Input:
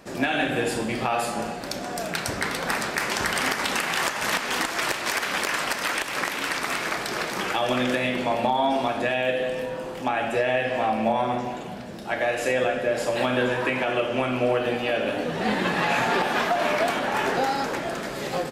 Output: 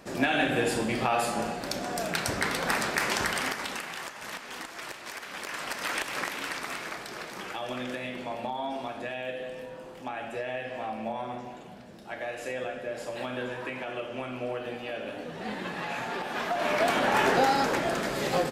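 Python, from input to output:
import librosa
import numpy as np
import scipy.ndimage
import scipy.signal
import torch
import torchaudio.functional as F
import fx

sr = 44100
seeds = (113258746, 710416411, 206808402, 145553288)

y = fx.gain(x, sr, db=fx.line((3.12, -1.5), (4.05, -14.0), (5.27, -14.0), (5.99, -4.0), (7.12, -11.0), (16.21, -11.0), (17.03, 1.0)))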